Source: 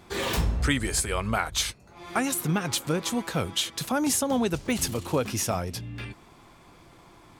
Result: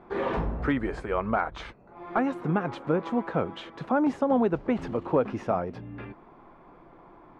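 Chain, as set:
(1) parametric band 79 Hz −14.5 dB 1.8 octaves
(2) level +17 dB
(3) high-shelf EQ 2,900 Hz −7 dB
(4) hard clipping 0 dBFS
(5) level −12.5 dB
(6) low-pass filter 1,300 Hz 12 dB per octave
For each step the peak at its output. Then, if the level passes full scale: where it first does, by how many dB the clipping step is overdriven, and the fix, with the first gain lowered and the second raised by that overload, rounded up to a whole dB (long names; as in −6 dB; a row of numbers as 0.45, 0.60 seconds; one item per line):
−10.5, +6.5, +5.5, 0.0, −12.5, −12.0 dBFS
step 2, 5.5 dB
step 2 +11 dB, step 5 −6.5 dB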